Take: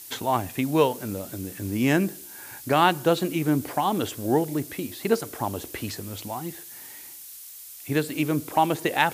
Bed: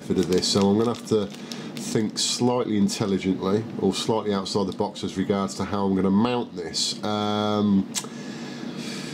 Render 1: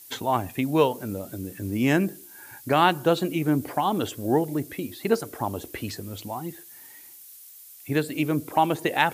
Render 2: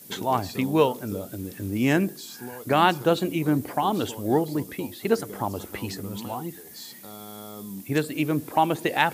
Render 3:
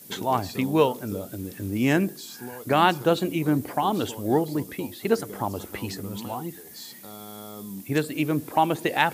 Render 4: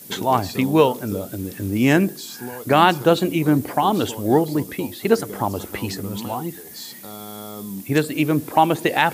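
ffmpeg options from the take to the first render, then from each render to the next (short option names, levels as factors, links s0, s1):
-af "afftdn=nr=7:nf=-43"
-filter_complex "[1:a]volume=0.133[s0];[0:a][s0]amix=inputs=2:normalize=0"
-af anull
-af "volume=1.88,alimiter=limit=0.794:level=0:latency=1"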